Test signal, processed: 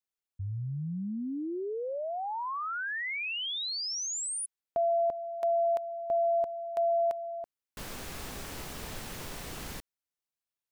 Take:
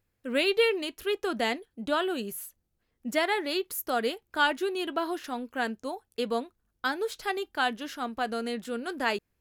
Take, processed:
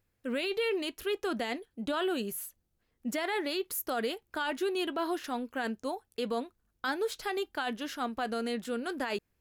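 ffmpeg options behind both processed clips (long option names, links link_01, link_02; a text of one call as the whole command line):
ffmpeg -i in.wav -af "alimiter=limit=-23.5dB:level=0:latency=1:release=19" out.wav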